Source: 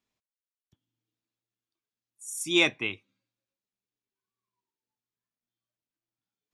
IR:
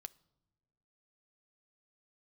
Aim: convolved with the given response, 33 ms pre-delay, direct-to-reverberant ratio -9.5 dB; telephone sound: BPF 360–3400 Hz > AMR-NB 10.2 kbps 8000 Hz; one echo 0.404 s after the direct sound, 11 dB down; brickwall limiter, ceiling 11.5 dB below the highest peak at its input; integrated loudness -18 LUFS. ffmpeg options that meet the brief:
-filter_complex "[0:a]alimiter=limit=-20dB:level=0:latency=1,aecho=1:1:404:0.282,asplit=2[a][b];[1:a]atrim=start_sample=2205,adelay=33[c];[b][c]afir=irnorm=-1:irlink=0,volume=15dB[d];[a][d]amix=inputs=2:normalize=0,highpass=360,lowpass=3.4k,volume=9dB" -ar 8000 -c:a libopencore_amrnb -b:a 10200

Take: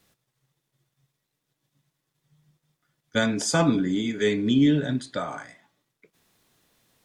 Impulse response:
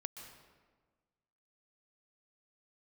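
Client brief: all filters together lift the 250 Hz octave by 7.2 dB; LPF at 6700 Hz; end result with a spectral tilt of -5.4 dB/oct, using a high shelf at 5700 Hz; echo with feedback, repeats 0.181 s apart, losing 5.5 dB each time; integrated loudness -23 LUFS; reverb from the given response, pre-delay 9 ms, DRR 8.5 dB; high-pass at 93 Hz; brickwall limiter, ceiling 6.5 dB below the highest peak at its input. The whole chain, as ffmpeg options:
-filter_complex "[0:a]highpass=93,lowpass=6.7k,equalizer=f=250:t=o:g=8.5,highshelf=f=5.7k:g=7,alimiter=limit=-10dB:level=0:latency=1,aecho=1:1:181|362|543|724|905|1086|1267:0.531|0.281|0.149|0.079|0.0419|0.0222|0.0118,asplit=2[a][b];[1:a]atrim=start_sample=2205,adelay=9[c];[b][c]afir=irnorm=-1:irlink=0,volume=-6dB[d];[a][d]amix=inputs=2:normalize=0,volume=-4.5dB"

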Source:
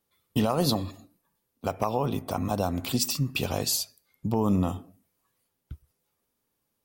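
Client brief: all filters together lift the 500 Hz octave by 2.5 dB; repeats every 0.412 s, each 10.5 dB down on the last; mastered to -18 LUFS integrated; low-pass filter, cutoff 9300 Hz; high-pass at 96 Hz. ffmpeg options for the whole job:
-af "highpass=96,lowpass=9.3k,equalizer=f=500:t=o:g=3,aecho=1:1:412|824|1236:0.299|0.0896|0.0269,volume=10dB"

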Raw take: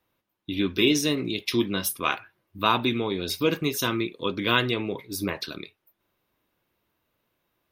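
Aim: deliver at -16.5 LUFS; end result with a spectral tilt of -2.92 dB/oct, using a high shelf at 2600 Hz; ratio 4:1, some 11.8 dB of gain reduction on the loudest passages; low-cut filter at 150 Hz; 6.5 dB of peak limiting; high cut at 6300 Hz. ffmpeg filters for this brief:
-af "highpass=150,lowpass=6.3k,highshelf=f=2.6k:g=8,acompressor=threshold=-28dB:ratio=4,volume=16.5dB,alimiter=limit=-3.5dB:level=0:latency=1"

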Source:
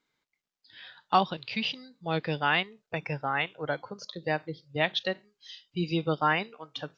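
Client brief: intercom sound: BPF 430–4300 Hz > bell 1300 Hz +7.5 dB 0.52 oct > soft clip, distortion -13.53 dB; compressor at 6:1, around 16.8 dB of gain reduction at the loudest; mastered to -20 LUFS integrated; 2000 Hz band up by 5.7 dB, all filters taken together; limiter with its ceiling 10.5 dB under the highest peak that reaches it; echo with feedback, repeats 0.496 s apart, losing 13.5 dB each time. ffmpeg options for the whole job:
-af "equalizer=f=2k:t=o:g=4.5,acompressor=threshold=-36dB:ratio=6,alimiter=level_in=7dB:limit=-24dB:level=0:latency=1,volume=-7dB,highpass=430,lowpass=4.3k,equalizer=f=1.3k:t=o:w=0.52:g=7.5,aecho=1:1:496|992:0.211|0.0444,asoftclip=threshold=-36dB,volume=26dB"

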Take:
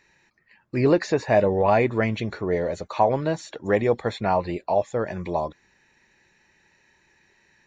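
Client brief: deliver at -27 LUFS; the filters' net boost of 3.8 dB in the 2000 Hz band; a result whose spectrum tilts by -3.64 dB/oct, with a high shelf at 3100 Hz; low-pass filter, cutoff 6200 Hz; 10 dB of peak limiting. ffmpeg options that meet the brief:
-af "lowpass=6.2k,equalizer=f=2k:t=o:g=6.5,highshelf=f=3.1k:g=-6,volume=0.5dB,alimiter=limit=-15.5dB:level=0:latency=1"

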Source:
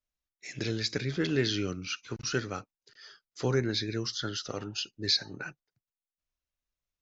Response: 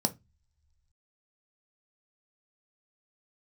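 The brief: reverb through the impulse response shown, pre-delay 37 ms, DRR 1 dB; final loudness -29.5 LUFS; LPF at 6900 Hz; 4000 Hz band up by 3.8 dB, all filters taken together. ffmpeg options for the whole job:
-filter_complex "[0:a]lowpass=6.9k,equalizer=f=4k:t=o:g=5,asplit=2[a][b];[1:a]atrim=start_sample=2205,adelay=37[c];[b][c]afir=irnorm=-1:irlink=0,volume=-7dB[d];[a][d]amix=inputs=2:normalize=0,volume=-4dB"

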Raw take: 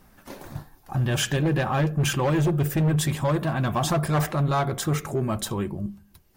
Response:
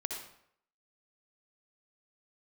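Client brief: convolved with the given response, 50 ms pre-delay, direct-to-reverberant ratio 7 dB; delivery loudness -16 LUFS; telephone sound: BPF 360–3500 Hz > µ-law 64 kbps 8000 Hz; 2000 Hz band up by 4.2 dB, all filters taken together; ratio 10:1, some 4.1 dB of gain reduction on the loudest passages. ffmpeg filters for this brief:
-filter_complex "[0:a]equalizer=f=2k:t=o:g=6,acompressor=threshold=-23dB:ratio=10,asplit=2[a][b];[1:a]atrim=start_sample=2205,adelay=50[c];[b][c]afir=irnorm=-1:irlink=0,volume=-8.5dB[d];[a][d]amix=inputs=2:normalize=0,highpass=360,lowpass=3.5k,volume=15dB" -ar 8000 -c:a pcm_mulaw

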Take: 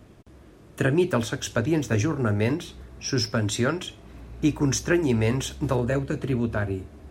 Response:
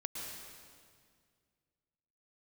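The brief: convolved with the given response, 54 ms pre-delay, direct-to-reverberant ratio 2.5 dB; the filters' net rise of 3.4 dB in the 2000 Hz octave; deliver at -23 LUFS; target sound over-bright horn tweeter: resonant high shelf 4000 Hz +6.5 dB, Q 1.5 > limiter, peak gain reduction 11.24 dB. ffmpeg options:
-filter_complex "[0:a]equalizer=f=2k:t=o:g=6,asplit=2[a][b];[1:a]atrim=start_sample=2205,adelay=54[c];[b][c]afir=irnorm=-1:irlink=0,volume=-3dB[d];[a][d]amix=inputs=2:normalize=0,highshelf=f=4k:t=q:w=1.5:g=6.5,volume=3.5dB,alimiter=limit=-13.5dB:level=0:latency=1"

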